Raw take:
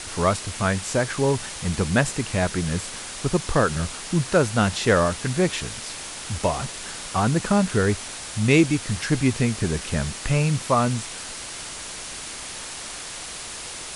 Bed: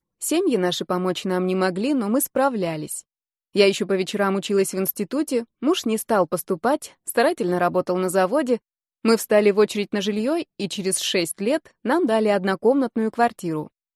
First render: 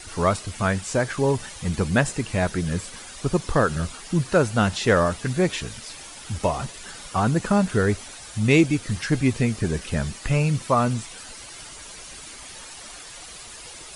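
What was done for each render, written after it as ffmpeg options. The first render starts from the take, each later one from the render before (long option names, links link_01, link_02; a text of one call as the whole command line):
ffmpeg -i in.wav -af "afftdn=noise_reduction=10:noise_floor=-36" out.wav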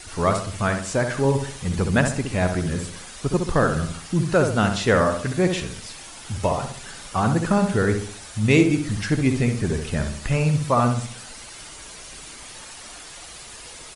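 ffmpeg -i in.wav -filter_complex "[0:a]asplit=2[link_01][link_02];[link_02]adelay=66,lowpass=frequency=2000:poles=1,volume=-5.5dB,asplit=2[link_03][link_04];[link_04]adelay=66,lowpass=frequency=2000:poles=1,volume=0.44,asplit=2[link_05][link_06];[link_06]adelay=66,lowpass=frequency=2000:poles=1,volume=0.44,asplit=2[link_07][link_08];[link_08]adelay=66,lowpass=frequency=2000:poles=1,volume=0.44,asplit=2[link_09][link_10];[link_10]adelay=66,lowpass=frequency=2000:poles=1,volume=0.44[link_11];[link_01][link_03][link_05][link_07][link_09][link_11]amix=inputs=6:normalize=0" out.wav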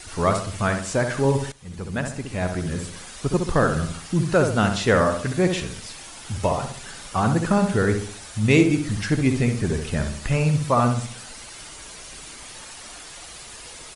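ffmpeg -i in.wav -filter_complex "[0:a]asplit=2[link_01][link_02];[link_01]atrim=end=1.52,asetpts=PTS-STARTPTS,afade=type=out:start_time=1.516:duration=0.004:curve=hsin:silence=0.149624[link_03];[link_02]atrim=start=1.52,asetpts=PTS-STARTPTS,afade=type=in:duration=1.57:silence=0.149624[link_04];[link_03][link_04]concat=n=2:v=0:a=1" out.wav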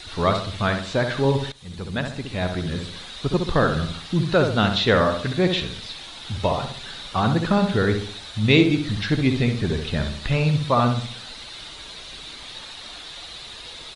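ffmpeg -i in.wav -filter_complex "[0:a]acrossover=split=4600[link_01][link_02];[link_02]acompressor=threshold=-54dB:ratio=4:attack=1:release=60[link_03];[link_01][link_03]amix=inputs=2:normalize=0,equalizer=frequency=3800:width=2.9:gain=14.5" out.wav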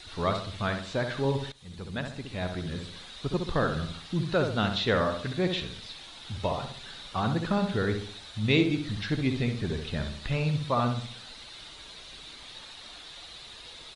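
ffmpeg -i in.wav -af "volume=-7.5dB" out.wav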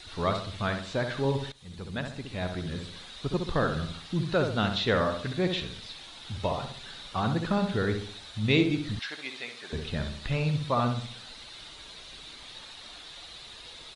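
ffmpeg -i in.wav -filter_complex "[0:a]asettb=1/sr,asplit=3[link_01][link_02][link_03];[link_01]atrim=end=8.994[link_04];[link_02]atrim=start=8.99:end=9.73,asetpts=PTS-STARTPTS,afade=type=in:duration=0.004:curve=qsin,afade=type=out:start_time=0.736:duration=0.004:curve=qsin,highpass=830[link_05];[link_03]atrim=start=9.726[link_06];[link_04][link_05]acrossfade=duration=0.004:curve1=hsin:curve2=qsin[link_07];[link_07][link_06]acrossfade=duration=0.004:curve1=qsin:curve2=hsin" out.wav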